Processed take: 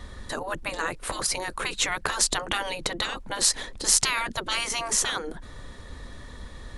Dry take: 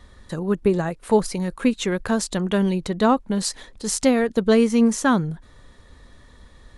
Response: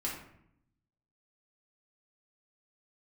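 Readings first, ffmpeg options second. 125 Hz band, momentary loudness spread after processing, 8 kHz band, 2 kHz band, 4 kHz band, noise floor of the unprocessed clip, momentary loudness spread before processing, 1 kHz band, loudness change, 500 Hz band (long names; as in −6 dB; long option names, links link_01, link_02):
−14.5 dB, 22 LU, +6.0 dB, +1.5 dB, +5.5 dB, −50 dBFS, 10 LU, −4.0 dB, −4.5 dB, −14.0 dB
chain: -af "afftfilt=real='re*lt(hypot(re,im),0.141)':imag='im*lt(hypot(re,im),0.141)':win_size=1024:overlap=0.75,volume=7dB"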